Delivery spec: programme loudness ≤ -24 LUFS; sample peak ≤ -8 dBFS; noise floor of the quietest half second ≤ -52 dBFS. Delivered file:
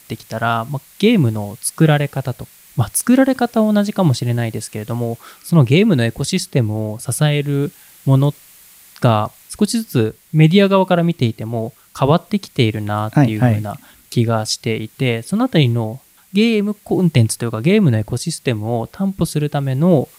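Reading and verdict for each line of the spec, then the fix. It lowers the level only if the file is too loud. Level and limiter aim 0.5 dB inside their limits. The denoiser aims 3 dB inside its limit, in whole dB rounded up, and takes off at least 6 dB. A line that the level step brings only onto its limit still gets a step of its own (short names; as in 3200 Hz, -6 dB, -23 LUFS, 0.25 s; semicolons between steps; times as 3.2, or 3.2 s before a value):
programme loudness -17.0 LUFS: fail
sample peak -2.0 dBFS: fail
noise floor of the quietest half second -45 dBFS: fail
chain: gain -7.5 dB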